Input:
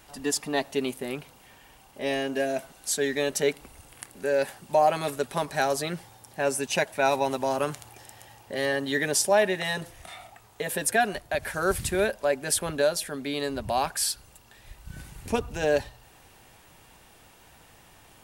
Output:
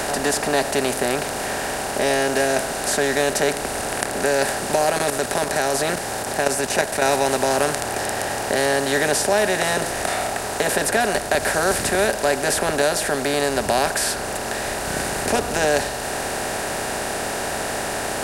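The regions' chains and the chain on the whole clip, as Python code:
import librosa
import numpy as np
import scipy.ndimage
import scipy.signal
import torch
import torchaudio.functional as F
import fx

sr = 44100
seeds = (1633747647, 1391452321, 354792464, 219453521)

y = fx.chain(x, sr, fx.high_shelf(hz=5600.0, db=4.5),
    fx.level_steps(step_db=11), at=(4.74, 7.09))
y = fx.bin_compress(y, sr, power=0.4)
y = fx.band_squash(y, sr, depth_pct=40)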